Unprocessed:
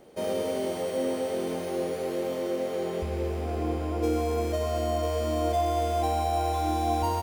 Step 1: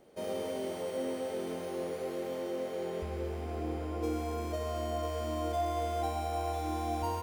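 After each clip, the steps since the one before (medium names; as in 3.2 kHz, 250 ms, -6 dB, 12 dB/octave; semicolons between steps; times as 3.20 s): feedback echo behind a band-pass 62 ms, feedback 79%, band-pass 1.1 kHz, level -7 dB; trim -7 dB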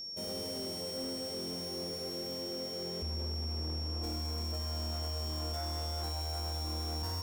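tone controls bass +12 dB, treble +14 dB; overload inside the chain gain 28.5 dB; whistle 5.5 kHz -33 dBFS; trim -7 dB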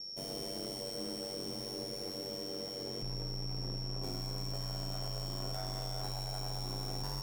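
ring modulator 49 Hz; trim +1 dB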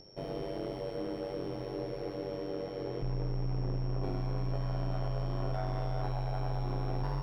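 peaking EQ 220 Hz -11.5 dB 0.22 oct; upward compressor, threshold -43 dBFS; distance through air 410 m; trim +7.5 dB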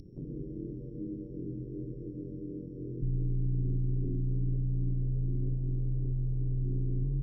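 inverse Chebyshev low-pass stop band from 660 Hz, stop band 40 dB; upward compressor, threshold -43 dBFS; trim +3.5 dB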